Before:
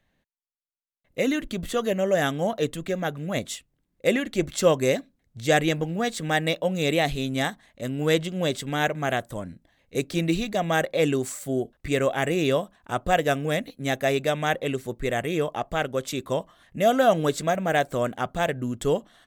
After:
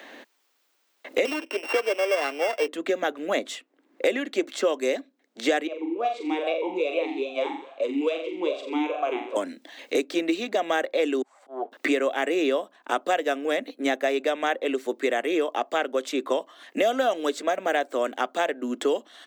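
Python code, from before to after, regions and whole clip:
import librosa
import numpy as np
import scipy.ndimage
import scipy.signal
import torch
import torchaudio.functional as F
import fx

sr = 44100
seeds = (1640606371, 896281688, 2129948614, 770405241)

y = fx.chain(x, sr, fx.sample_sort(block=16),
    fx.highpass(hz=380.0, slope=24), at=(1.25, 2.68))
y = fx.chain(y, sr, fx.room_flutter(wall_m=7.4, rt60_s=0.49),
    fx.vowel_sweep(vowels='a-u', hz=2.4), at=(5.67, 9.36))
y = fx.chain(y, sr, fx.leveller(passes=1),
    fx.bandpass_q(hz=830.0, q=4.8),
    fx.auto_swell(attack_ms=215.0), at=(11.22, 11.72))
y = scipy.signal.sosfilt(scipy.signal.butter(8, 260.0, 'highpass', fs=sr, output='sos'), y)
y = fx.peak_eq(y, sr, hz=12000.0, db=-11.5, octaves=1.2)
y = fx.band_squash(y, sr, depth_pct=100)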